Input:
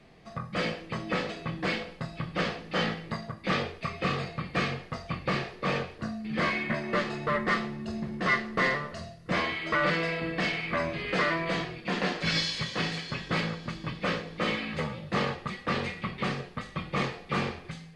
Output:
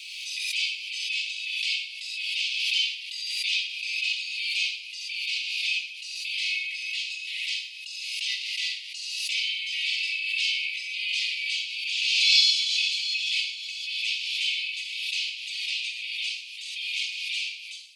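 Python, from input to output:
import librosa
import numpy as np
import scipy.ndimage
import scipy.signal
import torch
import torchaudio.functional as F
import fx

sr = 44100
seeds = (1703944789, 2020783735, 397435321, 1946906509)

y = scipy.signal.sosfilt(scipy.signal.butter(16, 2400.0, 'highpass', fs=sr, output='sos'), x)
y = fx.room_shoebox(y, sr, seeds[0], volume_m3=3200.0, walls='furnished', distance_m=2.4)
y = fx.pre_swell(y, sr, db_per_s=26.0)
y = F.gain(torch.from_numpy(y), 8.5).numpy()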